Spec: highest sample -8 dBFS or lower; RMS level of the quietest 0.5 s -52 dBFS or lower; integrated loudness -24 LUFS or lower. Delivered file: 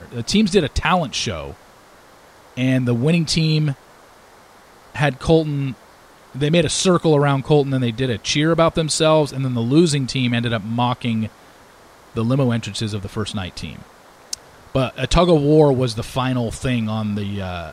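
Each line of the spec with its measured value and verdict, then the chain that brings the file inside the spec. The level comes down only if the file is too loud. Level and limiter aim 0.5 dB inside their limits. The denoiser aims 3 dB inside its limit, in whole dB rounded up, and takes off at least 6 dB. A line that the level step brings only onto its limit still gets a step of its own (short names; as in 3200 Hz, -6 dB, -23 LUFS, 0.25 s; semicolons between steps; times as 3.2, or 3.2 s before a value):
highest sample -3.0 dBFS: fail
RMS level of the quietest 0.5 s -47 dBFS: fail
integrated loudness -19.0 LUFS: fail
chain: gain -5.5 dB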